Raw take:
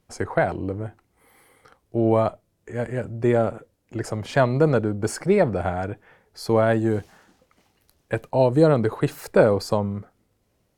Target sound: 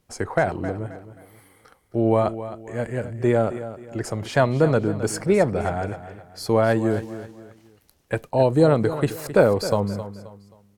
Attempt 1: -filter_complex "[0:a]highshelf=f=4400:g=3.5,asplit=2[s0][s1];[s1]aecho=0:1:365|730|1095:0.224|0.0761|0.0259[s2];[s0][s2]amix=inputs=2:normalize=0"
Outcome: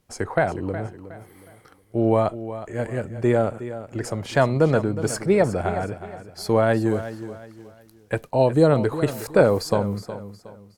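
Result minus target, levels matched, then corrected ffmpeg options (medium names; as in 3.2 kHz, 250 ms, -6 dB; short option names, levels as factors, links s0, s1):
echo 100 ms late
-filter_complex "[0:a]highshelf=f=4400:g=3.5,asplit=2[s0][s1];[s1]aecho=0:1:265|530|795:0.224|0.0761|0.0259[s2];[s0][s2]amix=inputs=2:normalize=0"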